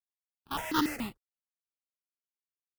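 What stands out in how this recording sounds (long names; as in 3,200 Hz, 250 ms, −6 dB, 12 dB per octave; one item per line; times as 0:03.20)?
a quantiser's noise floor 12 bits, dither none
tremolo triangle 1.5 Hz, depth 75%
aliases and images of a low sample rate 2,300 Hz, jitter 20%
notches that jump at a steady rate 7 Hz 700–2,400 Hz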